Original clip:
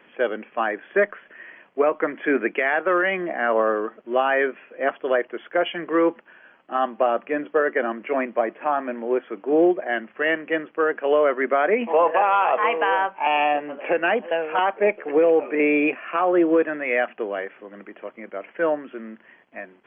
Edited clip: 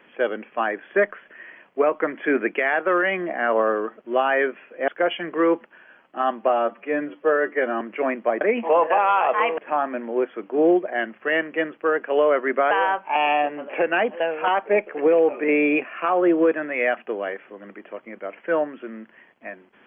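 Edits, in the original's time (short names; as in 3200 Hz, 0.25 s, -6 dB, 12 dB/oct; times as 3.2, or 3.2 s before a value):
4.88–5.43 cut
7.04–7.92 stretch 1.5×
11.65–12.82 move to 8.52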